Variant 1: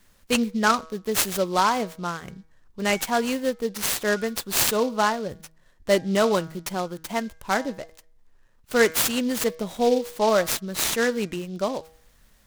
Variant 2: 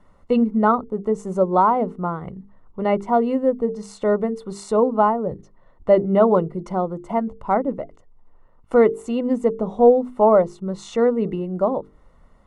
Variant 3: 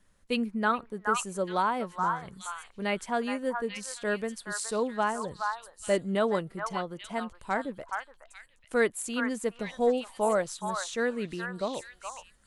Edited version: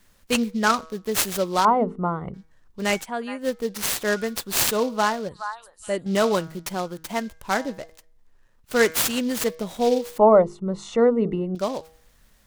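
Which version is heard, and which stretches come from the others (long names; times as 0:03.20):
1
0:01.65–0:02.34: punch in from 2
0:03.01–0:03.44: punch in from 3, crossfade 0.10 s
0:05.29–0:06.06: punch in from 3
0:10.18–0:11.55: punch in from 2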